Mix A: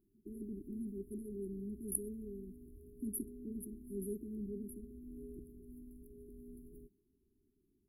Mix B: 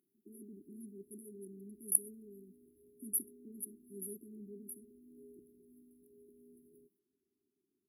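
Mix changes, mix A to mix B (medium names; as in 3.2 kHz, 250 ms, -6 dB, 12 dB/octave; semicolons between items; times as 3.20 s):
speech: add tilt shelf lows -8.5 dB, about 1.2 kHz; background: add frequency weighting A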